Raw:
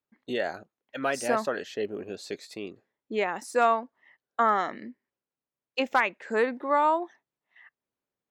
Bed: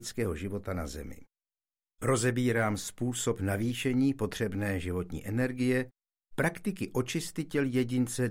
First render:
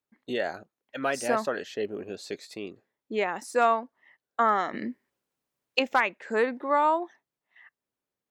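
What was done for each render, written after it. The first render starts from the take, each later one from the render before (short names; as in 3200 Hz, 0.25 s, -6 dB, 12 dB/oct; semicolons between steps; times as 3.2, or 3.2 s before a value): 4.74–5.79 gain +8 dB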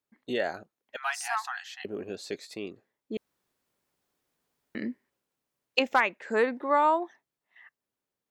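0.96–1.85 brick-wall FIR high-pass 700 Hz; 3.17–4.75 room tone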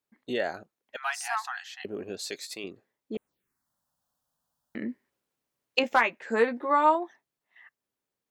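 2.19–2.64 tilt +3 dB/oct; 3.15–4.89 envelope phaser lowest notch 370 Hz, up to 4900 Hz, full sweep at -36.5 dBFS; 5.82–6.95 doubler 13 ms -6 dB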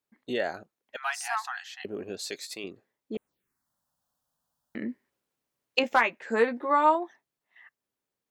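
nothing audible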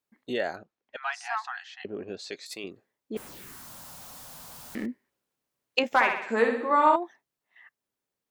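0.56–2.46 air absorption 110 m; 3.16–4.86 zero-crossing step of -39 dBFS; 5.87–6.96 flutter echo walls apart 10.8 m, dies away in 0.66 s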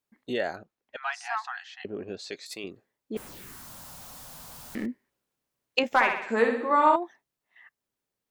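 low shelf 94 Hz +6.5 dB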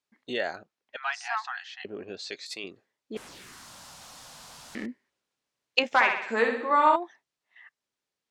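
LPF 5800 Hz 12 dB/oct; tilt +2 dB/oct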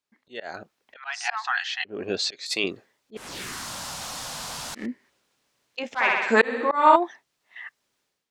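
auto swell 0.307 s; AGC gain up to 13 dB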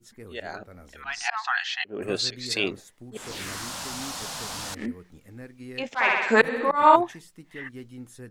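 add bed -13 dB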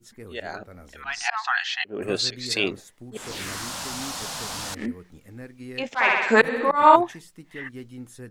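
gain +2 dB; limiter -1 dBFS, peak gain reduction 1 dB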